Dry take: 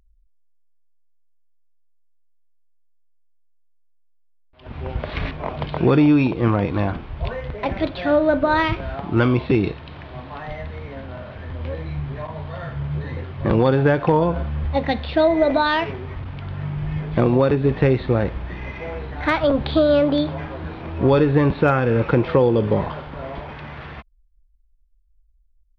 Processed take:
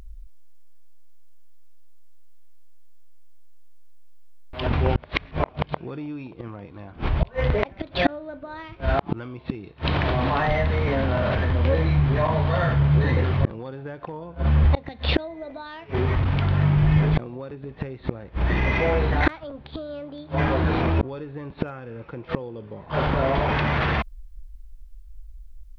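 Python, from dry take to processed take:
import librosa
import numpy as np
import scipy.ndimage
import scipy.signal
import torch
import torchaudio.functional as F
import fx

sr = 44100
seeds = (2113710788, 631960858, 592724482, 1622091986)

p1 = fx.gate_flip(x, sr, shuts_db=-15.0, range_db=-38)
p2 = fx.over_compress(p1, sr, threshold_db=-40.0, ratio=-1.0)
p3 = p1 + F.gain(torch.from_numpy(p2), 1.0).numpy()
y = F.gain(torch.from_numpy(p3), 7.0).numpy()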